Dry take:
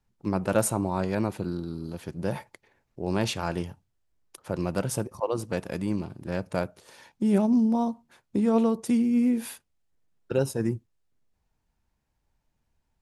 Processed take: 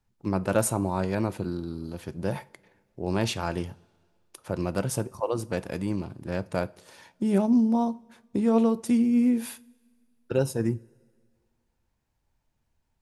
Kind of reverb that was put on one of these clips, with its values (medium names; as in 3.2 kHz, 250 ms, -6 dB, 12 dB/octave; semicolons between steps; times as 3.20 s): two-slope reverb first 0.29 s, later 1.9 s, from -18 dB, DRR 16 dB